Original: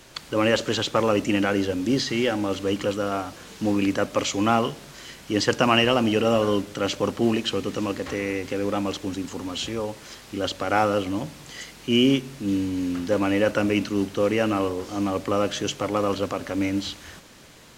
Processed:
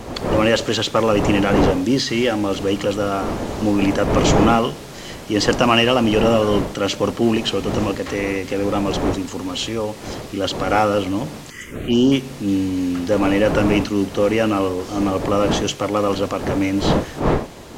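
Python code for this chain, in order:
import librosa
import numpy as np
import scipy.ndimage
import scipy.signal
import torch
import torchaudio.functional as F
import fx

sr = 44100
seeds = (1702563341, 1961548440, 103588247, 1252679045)

p1 = fx.dmg_wind(x, sr, seeds[0], corner_hz=530.0, level_db=-30.0)
p2 = fx.notch(p1, sr, hz=1500.0, q=25.0)
p3 = 10.0 ** (-21.5 / 20.0) * np.tanh(p2 / 10.0 ** (-21.5 / 20.0))
p4 = p2 + F.gain(torch.from_numpy(p3), -9.0).numpy()
p5 = fx.env_phaser(p4, sr, low_hz=600.0, high_hz=2300.0, full_db=-15.5, at=(11.5, 12.12))
y = F.gain(torch.from_numpy(p5), 3.0).numpy()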